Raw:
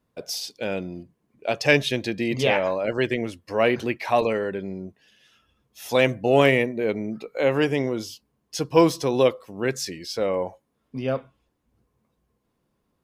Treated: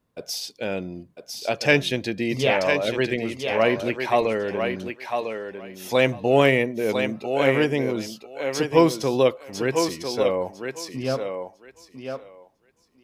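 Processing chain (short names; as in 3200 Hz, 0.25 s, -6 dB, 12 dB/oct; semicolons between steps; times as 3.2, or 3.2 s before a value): thinning echo 1.001 s, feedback 17%, high-pass 290 Hz, level -5 dB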